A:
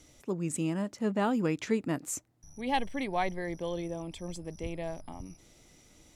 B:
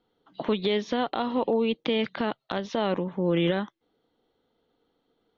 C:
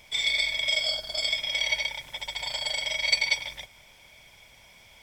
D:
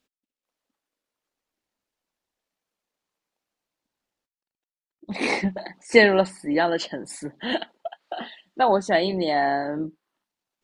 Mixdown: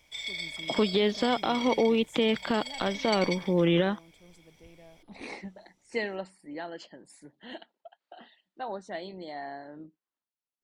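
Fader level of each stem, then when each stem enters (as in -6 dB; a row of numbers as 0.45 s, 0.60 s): -16.5 dB, +0.5 dB, -10.5 dB, -17.0 dB; 0.00 s, 0.30 s, 0.00 s, 0.00 s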